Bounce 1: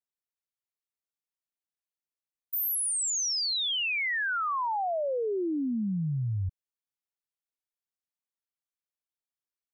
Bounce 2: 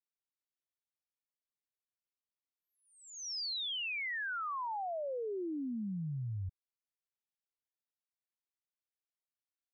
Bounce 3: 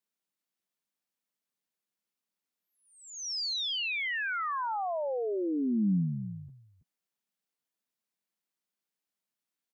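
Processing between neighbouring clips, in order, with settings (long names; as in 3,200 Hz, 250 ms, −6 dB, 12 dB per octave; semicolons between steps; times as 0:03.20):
Butterworth low-pass 5,600 Hz; level −8.5 dB
low shelf with overshoot 130 Hz −11.5 dB, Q 3; single-tap delay 327 ms −13 dB; level +5 dB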